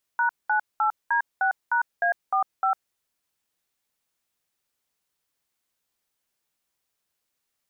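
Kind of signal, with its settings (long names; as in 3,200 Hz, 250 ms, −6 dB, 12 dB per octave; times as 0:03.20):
touch tones "#98D6#A45", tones 102 ms, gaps 203 ms, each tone −22 dBFS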